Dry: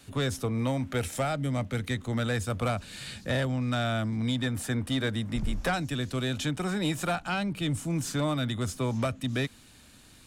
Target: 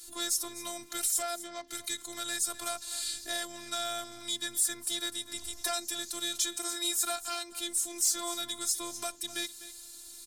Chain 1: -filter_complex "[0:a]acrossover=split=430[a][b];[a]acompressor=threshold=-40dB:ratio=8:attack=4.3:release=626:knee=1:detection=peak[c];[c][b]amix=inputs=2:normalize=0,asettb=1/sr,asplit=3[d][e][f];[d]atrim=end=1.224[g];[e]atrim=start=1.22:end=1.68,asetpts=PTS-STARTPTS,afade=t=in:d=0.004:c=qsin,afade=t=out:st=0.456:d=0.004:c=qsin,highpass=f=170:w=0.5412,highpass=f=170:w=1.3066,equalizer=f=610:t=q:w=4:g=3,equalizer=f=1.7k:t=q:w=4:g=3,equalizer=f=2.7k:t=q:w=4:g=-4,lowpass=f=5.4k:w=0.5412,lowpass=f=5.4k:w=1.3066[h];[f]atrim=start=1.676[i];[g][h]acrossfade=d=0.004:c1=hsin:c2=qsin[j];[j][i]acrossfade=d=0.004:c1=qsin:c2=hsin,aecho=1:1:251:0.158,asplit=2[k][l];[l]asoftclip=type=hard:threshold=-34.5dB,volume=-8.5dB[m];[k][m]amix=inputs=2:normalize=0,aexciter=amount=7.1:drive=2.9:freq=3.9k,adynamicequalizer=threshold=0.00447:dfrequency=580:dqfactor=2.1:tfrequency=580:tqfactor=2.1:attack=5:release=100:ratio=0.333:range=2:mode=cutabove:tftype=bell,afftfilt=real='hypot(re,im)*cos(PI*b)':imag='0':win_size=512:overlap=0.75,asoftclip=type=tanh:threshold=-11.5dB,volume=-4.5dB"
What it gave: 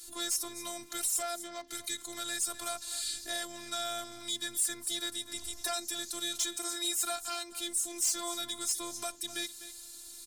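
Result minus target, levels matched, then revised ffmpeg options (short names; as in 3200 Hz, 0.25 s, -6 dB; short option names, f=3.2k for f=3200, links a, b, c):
hard clip: distortion +9 dB; soft clip: distortion +9 dB
-filter_complex "[0:a]acrossover=split=430[a][b];[a]acompressor=threshold=-40dB:ratio=8:attack=4.3:release=626:knee=1:detection=peak[c];[c][b]amix=inputs=2:normalize=0,asettb=1/sr,asplit=3[d][e][f];[d]atrim=end=1.224[g];[e]atrim=start=1.22:end=1.68,asetpts=PTS-STARTPTS,afade=t=in:d=0.004:c=qsin,afade=t=out:st=0.456:d=0.004:c=qsin,highpass=f=170:w=0.5412,highpass=f=170:w=1.3066,equalizer=f=610:t=q:w=4:g=3,equalizer=f=1.7k:t=q:w=4:g=3,equalizer=f=2.7k:t=q:w=4:g=-4,lowpass=f=5.4k:w=0.5412,lowpass=f=5.4k:w=1.3066[h];[f]atrim=start=1.676[i];[g][h]acrossfade=d=0.004:c1=hsin:c2=qsin[j];[j][i]acrossfade=d=0.004:c1=qsin:c2=hsin,aecho=1:1:251:0.158,asplit=2[k][l];[l]asoftclip=type=hard:threshold=-26.5dB,volume=-8.5dB[m];[k][m]amix=inputs=2:normalize=0,aexciter=amount=7.1:drive=2.9:freq=3.9k,adynamicequalizer=threshold=0.00447:dfrequency=580:dqfactor=2.1:tfrequency=580:tqfactor=2.1:attack=5:release=100:ratio=0.333:range=2:mode=cutabove:tftype=bell,afftfilt=real='hypot(re,im)*cos(PI*b)':imag='0':win_size=512:overlap=0.75,asoftclip=type=tanh:threshold=-4.5dB,volume=-4.5dB"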